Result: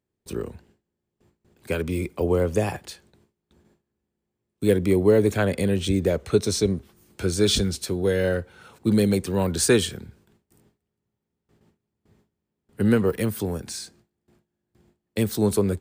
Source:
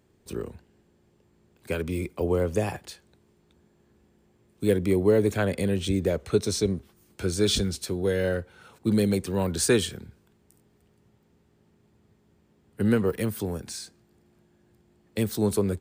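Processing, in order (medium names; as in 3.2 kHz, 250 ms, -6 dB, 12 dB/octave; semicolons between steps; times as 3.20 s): gate with hold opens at -52 dBFS; trim +3 dB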